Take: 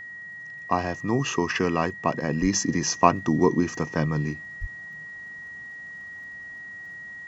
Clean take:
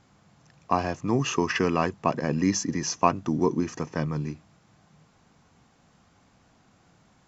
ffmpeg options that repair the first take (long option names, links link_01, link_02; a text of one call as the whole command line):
ffmpeg -i in.wav -filter_complex "[0:a]adeclick=threshold=4,bandreject=frequency=1900:width=30,asplit=3[link_01][link_02][link_03];[link_01]afade=type=out:start_time=2.41:duration=0.02[link_04];[link_02]highpass=frequency=140:width=0.5412,highpass=frequency=140:width=1.3066,afade=type=in:start_time=2.41:duration=0.02,afade=type=out:start_time=2.53:duration=0.02[link_05];[link_03]afade=type=in:start_time=2.53:duration=0.02[link_06];[link_04][link_05][link_06]amix=inputs=3:normalize=0,asplit=3[link_07][link_08][link_09];[link_07]afade=type=out:start_time=4.6:duration=0.02[link_10];[link_08]highpass=frequency=140:width=0.5412,highpass=frequency=140:width=1.3066,afade=type=in:start_time=4.6:duration=0.02,afade=type=out:start_time=4.72:duration=0.02[link_11];[link_09]afade=type=in:start_time=4.72:duration=0.02[link_12];[link_10][link_11][link_12]amix=inputs=3:normalize=0,asetnsamples=nb_out_samples=441:pad=0,asendcmd='2.53 volume volume -3.5dB',volume=0dB" out.wav